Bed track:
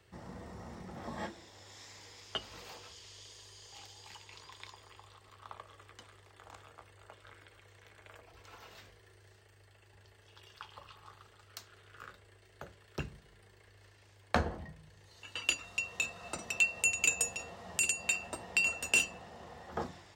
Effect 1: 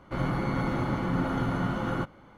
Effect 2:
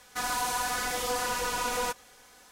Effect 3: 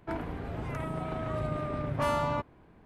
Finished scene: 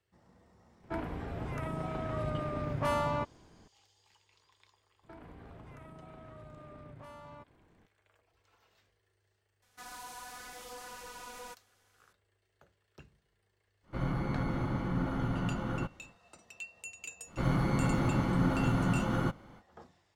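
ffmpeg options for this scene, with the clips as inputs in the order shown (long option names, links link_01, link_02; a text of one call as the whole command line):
ffmpeg -i bed.wav -i cue0.wav -i cue1.wav -i cue2.wav -filter_complex "[3:a]asplit=2[link_01][link_02];[1:a]asplit=2[link_03][link_04];[0:a]volume=-16dB[link_05];[link_02]acompressor=threshold=-39dB:ratio=6:attack=3.2:release=140:knee=1:detection=peak[link_06];[link_03]lowshelf=frequency=160:gain=7[link_07];[link_04]bass=frequency=250:gain=4,treble=frequency=4000:gain=6[link_08];[link_01]atrim=end=2.85,asetpts=PTS-STARTPTS,volume=-2dB,afade=type=in:duration=0.004:curve=hsin,afade=type=out:start_time=2.846:duration=0.004:curve=hsin,adelay=830[link_09];[link_06]atrim=end=2.85,asetpts=PTS-STARTPTS,volume=-8dB,afade=type=in:duration=0.02,afade=type=out:start_time=2.83:duration=0.02,adelay=5020[link_10];[2:a]atrim=end=2.51,asetpts=PTS-STARTPTS,volume=-16.5dB,afade=type=in:duration=0.004:curve=hsin,afade=type=out:start_time=2.506:duration=0.004:curve=hsin,adelay=424242S[link_11];[link_07]atrim=end=2.37,asetpts=PTS-STARTPTS,volume=-7.5dB,afade=type=in:duration=0.1,afade=type=out:start_time=2.27:duration=0.1,adelay=13820[link_12];[link_08]atrim=end=2.37,asetpts=PTS-STARTPTS,volume=-3dB,afade=type=in:duration=0.05,afade=type=out:start_time=2.32:duration=0.05,adelay=17260[link_13];[link_05][link_09][link_10][link_11][link_12][link_13]amix=inputs=6:normalize=0" out.wav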